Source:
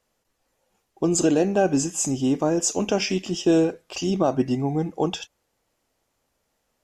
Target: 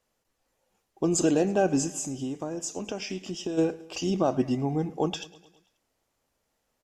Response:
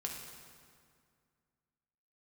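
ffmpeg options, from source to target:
-filter_complex "[0:a]asplit=3[link_01][link_02][link_03];[link_01]afade=type=out:start_time=1.92:duration=0.02[link_04];[link_02]acompressor=threshold=-27dB:ratio=6,afade=type=in:start_time=1.92:duration=0.02,afade=type=out:start_time=3.57:duration=0.02[link_05];[link_03]afade=type=in:start_time=3.57:duration=0.02[link_06];[link_04][link_05][link_06]amix=inputs=3:normalize=0,asplit=2[link_07][link_08];[link_08]aecho=0:1:107|214|321|428|535:0.1|0.059|0.0348|0.0205|0.0121[link_09];[link_07][link_09]amix=inputs=2:normalize=0,volume=-3.5dB"

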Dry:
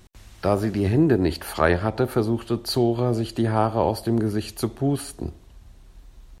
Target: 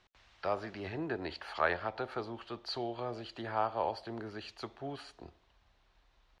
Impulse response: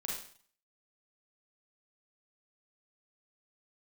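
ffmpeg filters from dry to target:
-filter_complex "[0:a]lowpass=6700,acrossover=split=560 5200:gain=0.158 1 0.1[link_01][link_02][link_03];[link_01][link_02][link_03]amix=inputs=3:normalize=0,volume=-7.5dB"

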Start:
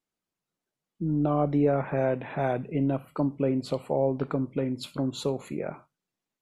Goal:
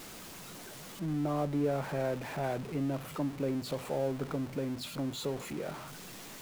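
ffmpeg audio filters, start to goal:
ffmpeg -i in.wav -af "aeval=exprs='val(0)+0.5*0.0282*sgn(val(0))':channel_layout=same,volume=-8.5dB" out.wav

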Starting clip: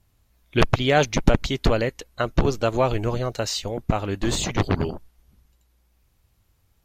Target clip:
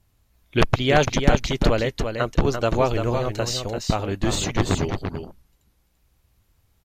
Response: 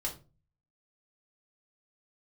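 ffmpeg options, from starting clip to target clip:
-af "aecho=1:1:340:0.473"

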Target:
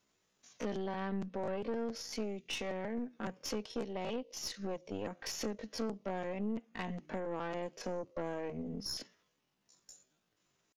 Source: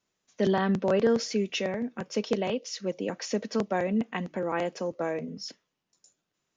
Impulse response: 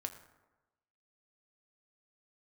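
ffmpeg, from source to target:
-af "acompressor=threshold=-40dB:ratio=5,atempo=0.61,aeval=exprs='(tanh(70.8*val(0)+0.65)-tanh(0.65))/70.8':channel_layout=same,volume=6.5dB"

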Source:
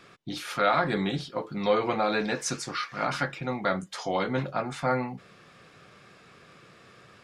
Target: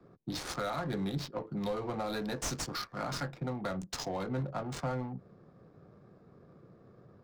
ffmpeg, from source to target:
ffmpeg -i in.wav -filter_complex "[0:a]acrossover=split=160|590|1900[link_01][link_02][link_03][link_04];[link_04]aexciter=amount=14.9:drive=1.4:freq=4100[link_05];[link_01][link_02][link_03][link_05]amix=inputs=4:normalize=0,asoftclip=type=tanh:threshold=-14.5dB,adynamicsmooth=sensitivity=4:basefreq=580,highshelf=frequency=2100:gain=-11,acrossover=split=130[link_06][link_07];[link_07]acompressor=threshold=-38dB:ratio=3[link_08];[link_06][link_08]amix=inputs=2:normalize=0,volume=1.5dB" out.wav

